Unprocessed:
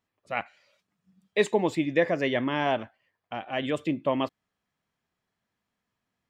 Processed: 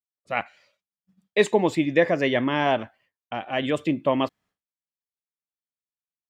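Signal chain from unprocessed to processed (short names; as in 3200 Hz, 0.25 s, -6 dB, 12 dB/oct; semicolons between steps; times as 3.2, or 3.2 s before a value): expander -57 dBFS; gain +4 dB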